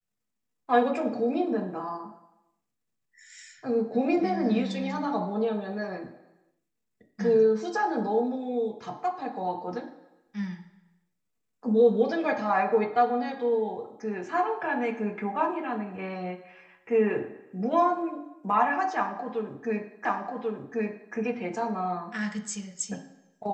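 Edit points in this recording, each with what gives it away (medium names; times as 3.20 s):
20.05 s: repeat of the last 1.09 s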